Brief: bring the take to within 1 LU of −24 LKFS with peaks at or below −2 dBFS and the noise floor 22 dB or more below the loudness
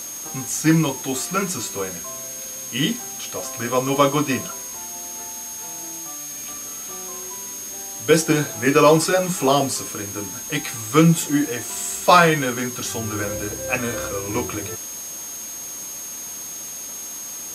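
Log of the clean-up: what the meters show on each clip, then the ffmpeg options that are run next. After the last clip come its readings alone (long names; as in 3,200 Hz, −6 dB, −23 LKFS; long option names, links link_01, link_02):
interfering tone 6,500 Hz; level of the tone −32 dBFS; background noise floor −33 dBFS; target noise floor −44 dBFS; integrated loudness −22.0 LKFS; sample peak −1.5 dBFS; target loudness −24.0 LKFS
→ -af "bandreject=frequency=6500:width=30"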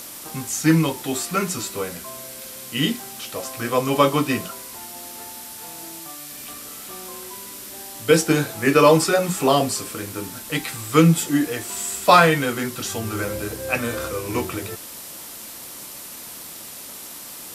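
interfering tone none found; background noise floor −38 dBFS; target noise floor −43 dBFS
→ -af "afftdn=noise_reduction=6:noise_floor=-38"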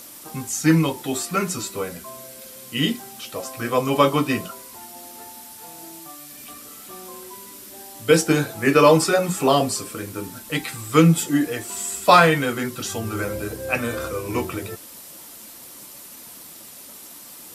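background noise floor −42 dBFS; target noise floor −43 dBFS
→ -af "afftdn=noise_reduction=6:noise_floor=-42"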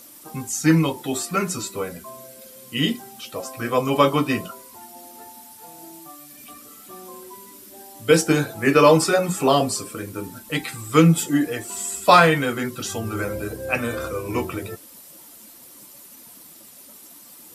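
background noise floor −46 dBFS; integrated loudness −21.0 LKFS; sample peak −1.5 dBFS; target loudness −24.0 LKFS
→ -af "volume=-3dB"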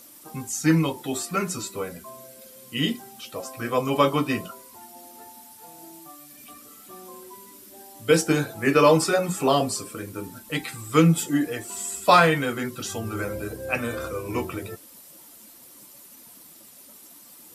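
integrated loudness −24.0 LKFS; sample peak −4.5 dBFS; background noise floor −49 dBFS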